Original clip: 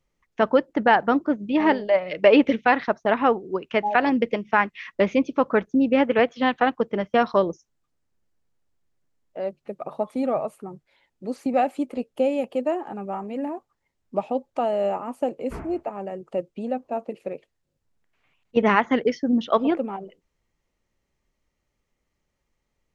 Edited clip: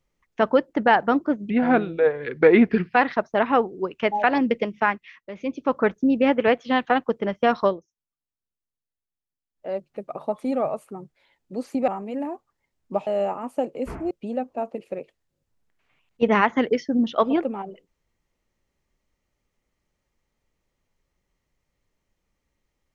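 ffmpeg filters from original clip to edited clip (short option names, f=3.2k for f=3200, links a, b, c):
-filter_complex "[0:a]asplit=10[a][b][c][d][e][f][g][h][i][j];[a]atrim=end=1.504[k];[b]atrim=start=1.5:end=2.65,asetpts=PTS-STARTPTS,asetrate=35280,aresample=44100[l];[c]atrim=start=2.646:end=4.95,asetpts=PTS-STARTPTS,afade=t=out:st=1.834:d=0.47:silence=0.141254[m];[d]atrim=start=4.95:end=5.03,asetpts=PTS-STARTPTS,volume=-17dB[n];[e]atrim=start=5.03:end=7.51,asetpts=PTS-STARTPTS,afade=t=in:d=0.47:silence=0.141254,afade=t=out:st=2.34:d=0.14:silence=0.105925[o];[f]atrim=start=7.51:end=9.25,asetpts=PTS-STARTPTS,volume=-19.5dB[p];[g]atrim=start=9.25:end=11.592,asetpts=PTS-STARTPTS,afade=t=in:d=0.14:silence=0.105925[q];[h]atrim=start=13.098:end=14.292[r];[i]atrim=start=14.708:end=15.752[s];[j]atrim=start=16.448[t];[k][l]acrossfade=d=0.004:c1=hsin:c2=hsin[u];[m][n][o][p][q]concat=n=5:v=0:a=1[v];[u][v]acrossfade=d=0.004:c1=hsin:c2=hsin[w];[w][r]acrossfade=d=0.004:c1=hsin:c2=hsin[x];[x][s]acrossfade=d=0.004:c1=hsin:c2=hsin[y];[y][t]acrossfade=d=0.004:c1=hsin:c2=hsin"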